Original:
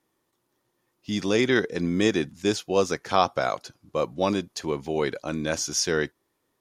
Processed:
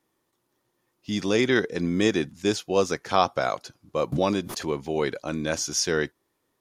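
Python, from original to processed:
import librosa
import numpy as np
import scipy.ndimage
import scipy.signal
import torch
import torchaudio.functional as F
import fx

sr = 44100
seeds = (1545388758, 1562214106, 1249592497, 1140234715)

y = fx.pre_swell(x, sr, db_per_s=48.0, at=(4.12, 4.67))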